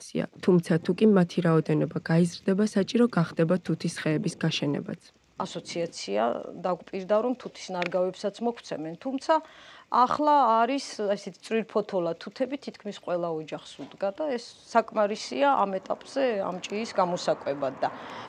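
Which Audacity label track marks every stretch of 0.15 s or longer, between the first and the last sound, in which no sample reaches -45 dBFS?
5.090000	5.390000	silence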